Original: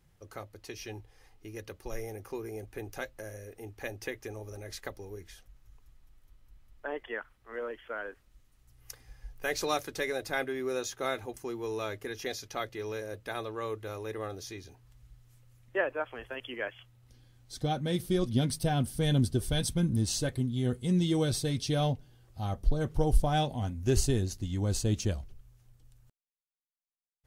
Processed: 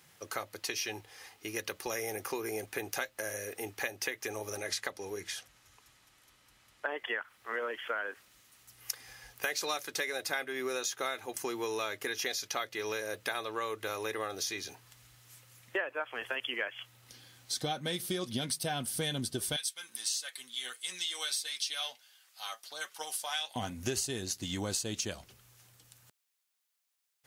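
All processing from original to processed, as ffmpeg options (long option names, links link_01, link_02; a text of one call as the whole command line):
ffmpeg -i in.wav -filter_complex "[0:a]asettb=1/sr,asplit=3[link_01][link_02][link_03];[link_01]atrim=end=4.584[link_04];[link_02]atrim=start=4.58:end=6.86,asetpts=PTS-STARTPTS,afade=type=in:duration=0.004:curve=qsin,afade=type=out:start_time=2.276:duration=0.004:curve=qsin,lowpass=11000,bandreject=frequency=107.3:width_type=h:width=4,bandreject=frequency=214.6:width_type=h:width=4[link_05];[link_03]atrim=start=6.856[link_06];[link_04][link_05]acrossfade=duration=0.004:curve1=hsin:curve2=qsin[link_07];[link_07][link_06]acrossfade=duration=0.004:curve1=qsin:curve2=hsin,asettb=1/sr,asplit=3[link_08][link_09][link_10];[link_08]atrim=end=19.564[link_11];[link_09]atrim=start=19.56:end=23.56,asetpts=PTS-STARTPTS,afade=type=in:duration=0.004:curve=qsin,afade=type=out:start_time=3.996:duration=0.004:curve=qsin,highpass=1500,flanger=delay=5.1:depth=3.9:regen=55:speed=1.5:shape=triangular[link_12];[link_10]atrim=start=23.556[link_13];[link_11][link_12]acrossfade=duration=0.004:curve1=hsin:curve2=qsin[link_14];[link_14][link_13]acrossfade=duration=0.004:curve1=qsin:curve2=hsin,highpass=140,tiltshelf=frequency=670:gain=-7,acompressor=threshold=-40dB:ratio=6,volume=8dB" out.wav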